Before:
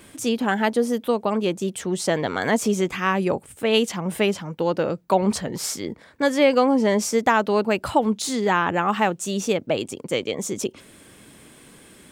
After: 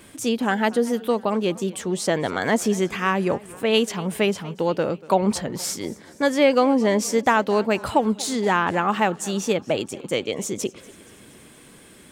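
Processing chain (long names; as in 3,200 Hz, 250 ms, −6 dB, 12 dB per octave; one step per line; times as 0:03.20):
feedback echo with a swinging delay time 236 ms, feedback 58%, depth 123 cents, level −21 dB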